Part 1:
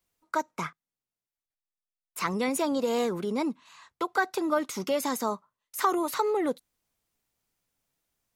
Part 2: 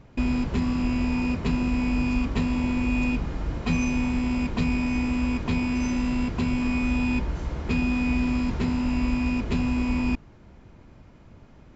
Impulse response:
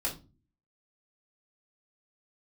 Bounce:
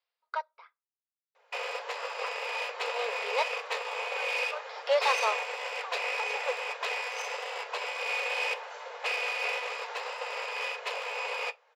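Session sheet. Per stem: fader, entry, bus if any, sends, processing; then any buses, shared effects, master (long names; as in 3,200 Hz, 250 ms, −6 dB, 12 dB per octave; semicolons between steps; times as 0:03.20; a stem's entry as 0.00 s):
−2.0 dB, 0.00 s, send −21 dB, Butterworth low-pass 5,200 Hz 96 dB per octave; tremolo with a sine in dB 0.59 Hz, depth 23 dB
−1.0 dB, 1.35 s, send −11.5 dB, wavefolder on the positive side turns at −22.5 dBFS; parametric band 6,400 Hz −3 dB 0.9 octaves; flanger 1.8 Hz, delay 3.6 ms, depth 4.7 ms, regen −47%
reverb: on, pre-delay 3 ms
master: mid-hump overdrive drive 18 dB, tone 7,100 Hz, clips at −14 dBFS; linear-phase brick-wall high-pass 420 Hz; expander for the loud parts 1.5 to 1, over −47 dBFS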